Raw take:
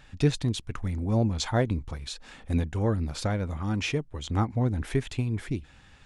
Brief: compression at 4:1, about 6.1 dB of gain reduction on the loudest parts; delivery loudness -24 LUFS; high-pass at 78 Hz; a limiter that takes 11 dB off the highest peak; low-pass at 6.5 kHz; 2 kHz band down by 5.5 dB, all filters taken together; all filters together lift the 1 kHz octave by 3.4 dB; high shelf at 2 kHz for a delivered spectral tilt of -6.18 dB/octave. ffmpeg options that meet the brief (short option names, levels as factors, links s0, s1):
-af "highpass=78,lowpass=6500,equalizer=f=1000:t=o:g=7.5,highshelf=f=2000:g=-6,equalizer=f=2000:t=o:g=-6,acompressor=threshold=0.0562:ratio=4,volume=4.47,alimiter=limit=0.224:level=0:latency=1"